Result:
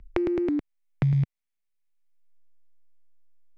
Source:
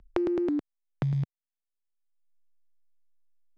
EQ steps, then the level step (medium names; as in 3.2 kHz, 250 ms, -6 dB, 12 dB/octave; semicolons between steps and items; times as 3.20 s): bass shelf 140 Hz +10.5 dB; peaking EQ 2.2 kHz +8 dB 0.62 oct; 0.0 dB